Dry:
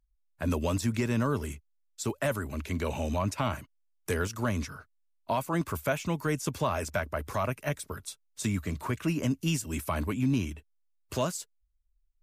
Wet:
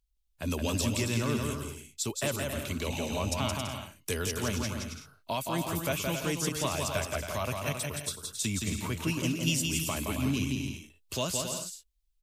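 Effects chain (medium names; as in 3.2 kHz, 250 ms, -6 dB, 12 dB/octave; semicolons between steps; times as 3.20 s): resonant high shelf 2.3 kHz +7.5 dB, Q 1.5; bouncing-ball echo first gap 170 ms, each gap 0.6×, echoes 5; trim -3.5 dB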